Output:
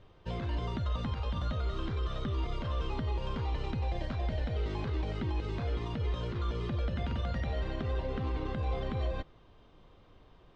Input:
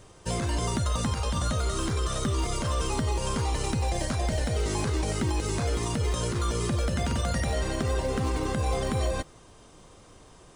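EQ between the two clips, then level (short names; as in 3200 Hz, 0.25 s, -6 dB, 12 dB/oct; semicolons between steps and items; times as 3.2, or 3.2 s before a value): Chebyshev low-pass 3600 Hz, order 3; low shelf 62 Hz +7.5 dB; -8.0 dB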